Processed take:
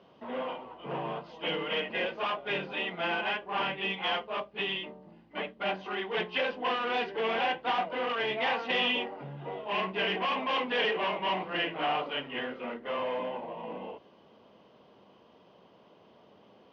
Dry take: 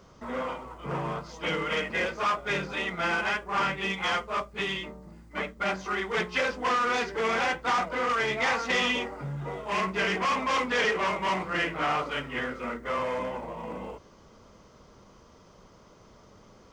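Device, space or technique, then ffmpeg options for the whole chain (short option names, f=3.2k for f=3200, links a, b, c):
kitchen radio: -af "highpass=200,equalizer=f=730:t=q:w=4:g=4,equalizer=f=1.3k:t=q:w=4:g=-9,equalizer=f=2.1k:t=q:w=4:g=-5,equalizer=f=2.9k:t=q:w=4:g=7,lowpass=f=3.6k:w=0.5412,lowpass=f=3.6k:w=1.3066,volume=-2dB"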